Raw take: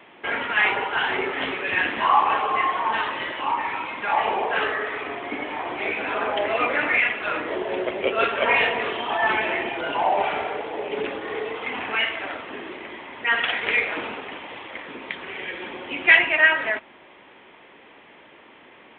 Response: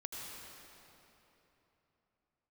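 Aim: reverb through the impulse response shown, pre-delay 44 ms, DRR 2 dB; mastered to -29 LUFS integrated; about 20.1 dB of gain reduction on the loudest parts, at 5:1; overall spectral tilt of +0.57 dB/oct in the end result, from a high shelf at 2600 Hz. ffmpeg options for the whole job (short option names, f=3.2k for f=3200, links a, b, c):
-filter_complex "[0:a]highshelf=f=2.6k:g=8.5,acompressor=threshold=-31dB:ratio=5,asplit=2[a][b];[1:a]atrim=start_sample=2205,adelay=44[c];[b][c]afir=irnorm=-1:irlink=0,volume=-1.5dB[d];[a][d]amix=inputs=2:normalize=0,volume=1.5dB"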